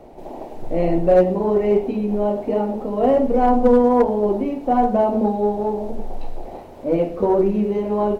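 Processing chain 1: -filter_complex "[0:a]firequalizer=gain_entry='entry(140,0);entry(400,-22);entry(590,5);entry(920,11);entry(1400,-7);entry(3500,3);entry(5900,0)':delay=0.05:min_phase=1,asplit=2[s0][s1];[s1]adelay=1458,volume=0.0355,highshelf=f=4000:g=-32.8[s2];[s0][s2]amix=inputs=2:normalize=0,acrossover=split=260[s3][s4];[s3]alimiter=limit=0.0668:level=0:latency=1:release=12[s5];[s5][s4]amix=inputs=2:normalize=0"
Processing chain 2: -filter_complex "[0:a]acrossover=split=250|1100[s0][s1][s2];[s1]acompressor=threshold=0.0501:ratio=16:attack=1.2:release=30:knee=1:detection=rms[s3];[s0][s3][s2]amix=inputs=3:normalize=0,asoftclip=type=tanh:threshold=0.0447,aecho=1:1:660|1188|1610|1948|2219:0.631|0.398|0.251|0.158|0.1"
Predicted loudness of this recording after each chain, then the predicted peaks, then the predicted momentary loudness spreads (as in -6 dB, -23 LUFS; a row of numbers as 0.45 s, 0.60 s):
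-18.0 LUFS, -29.5 LUFS; -1.0 dBFS, -19.0 dBFS; 18 LU, 5 LU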